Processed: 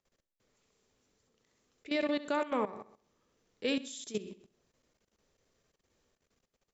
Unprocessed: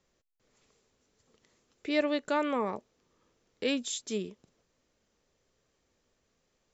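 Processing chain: flutter echo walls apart 11.2 m, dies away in 0.48 s; level quantiser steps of 15 dB

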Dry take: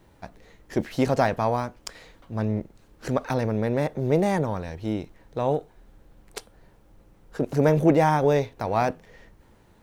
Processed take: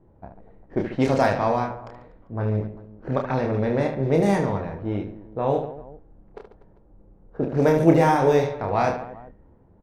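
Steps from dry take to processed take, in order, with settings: reverse bouncing-ball echo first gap 30 ms, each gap 1.5×, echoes 5; low-pass opened by the level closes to 680 Hz, open at -14 dBFS

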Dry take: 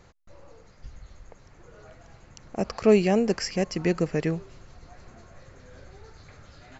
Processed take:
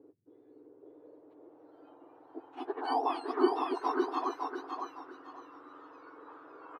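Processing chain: spectrum mirrored in octaves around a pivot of 1400 Hz; feedback echo 0.558 s, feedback 28%, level -4.5 dB; low-pass sweep 410 Hz -> 1200 Hz, 0.23–3.56

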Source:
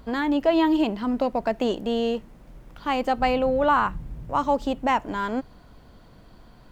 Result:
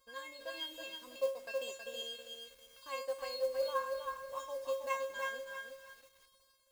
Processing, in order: AGC gain up to 3.5 dB; transient shaper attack +3 dB, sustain -9 dB; in parallel at 0 dB: compressor 10:1, threshold -28 dBFS, peak gain reduction 17.5 dB; on the sum: de-hum 289.3 Hz, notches 2; crossover distortion -48 dBFS; HPF 87 Hz 6 dB/oct; tone controls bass -8 dB, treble +9 dB; resonator 540 Hz, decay 0.37 s, mix 100%; on a send: thinning echo 65 ms, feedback 81%, high-pass 780 Hz, level -15.5 dB; on the sum: short-mantissa float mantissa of 4-bit; high shelf 3700 Hz +7.5 dB; lo-fi delay 0.321 s, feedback 35%, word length 9-bit, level -4 dB; gain -4.5 dB

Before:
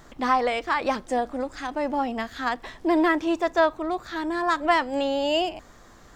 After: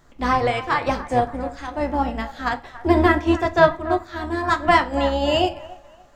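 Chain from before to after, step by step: octaver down 2 oct, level -1 dB; band-limited delay 0.285 s, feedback 43%, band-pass 1100 Hz, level -11 dB; shoebox room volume 49 m³, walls mixed, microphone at 0.32 m; upward expander 1.5:1, over -41 dBFS; gain +5.5 dB

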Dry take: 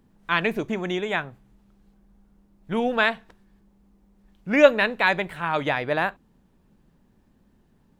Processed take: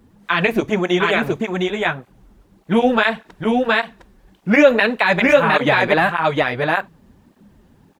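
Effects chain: echo 0.712 s -3 dB; maximiser +12 dB; tape flanging out of phase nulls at 1.7 Hz, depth 7.2 ms

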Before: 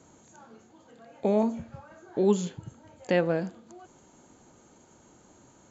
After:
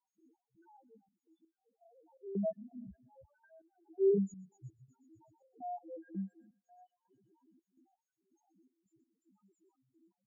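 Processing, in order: random spectral dropouts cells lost 39%; HPF 58 Hz 12 dB/oct; bell 350 Hz +4 dB 0.3 oct; granular stretch 1.8×, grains 69 ms; high shelf 2600 Hz -3 dB; loudest bins only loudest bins 1; on a send: thin delay 0.123 s, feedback 73%, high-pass 3300 Hz, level -12 dB; on the sum: step gate ".x.xxx.x..xx" 83 bpm -12 dB

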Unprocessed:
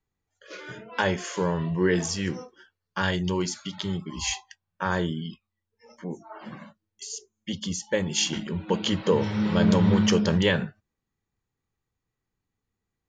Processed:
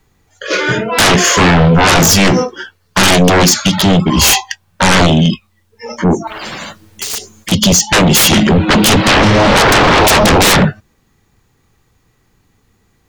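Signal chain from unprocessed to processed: sine folder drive 19 dB, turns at -9 dBFS; 6.27–7.52 spectral compressor 4:1; gain +4 dB

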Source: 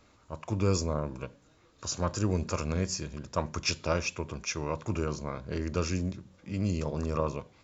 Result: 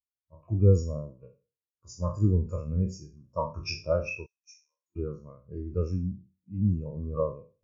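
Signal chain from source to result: spectral trails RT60 0.82 s; 4.26–4.96 differentiator; spectral expander 2.5:1; gain +2.5 dB

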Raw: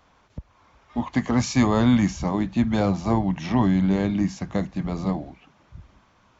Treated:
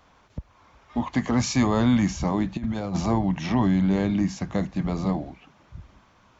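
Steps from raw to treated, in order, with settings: in parallel at +1 dB: limiter -19 dBFS, peak gain reduction 11 dB; 2.57–3.06 on the sum: negative-ratio compressor -21 dBFS, ratio -0.5; gain -5 dB

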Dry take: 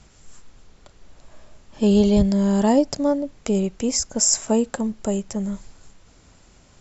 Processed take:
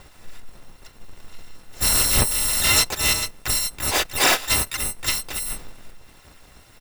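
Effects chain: FFT order left unsorted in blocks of 256 samples; harmoniser -5 st -4 dB, +5 st -2 dB; overdrive pedal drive 7 dB, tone 1500 Hz, clips at -1.5 dBFS; gain +7 dB

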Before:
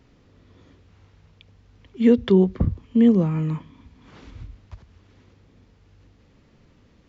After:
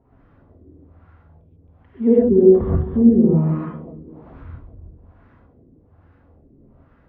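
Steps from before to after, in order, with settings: split-band echo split 440 Hz, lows 0.187 s, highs 0.269 s, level -12 dB; LFO low-pass sine 1.2 Hz 330–1500 Hz; non-linear reverb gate 0.16 s rising, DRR -7 dB; gain -5.5 dB

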